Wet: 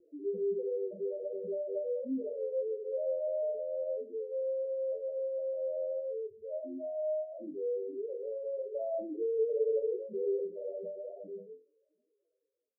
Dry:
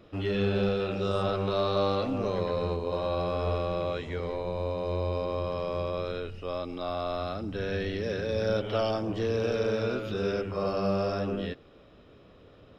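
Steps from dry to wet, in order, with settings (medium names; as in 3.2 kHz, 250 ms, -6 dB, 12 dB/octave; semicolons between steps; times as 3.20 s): fade out at the end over 3.02 s; high-pass 250 Hz 12 dB/octave; loudest bins only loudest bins 2; in parallel at -10 dB: hard clipper -38.5 dBFS, distortion -7 dB; on the sum: Chebyshev low-pass 680 Hz, order 10; 9.14–10.54 s: peaking EQ 470 Hz +4.5 dB 1 oct; on a send: flutter echo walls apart 3.9 m, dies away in 0.25 s; on the sum: trim -3 dB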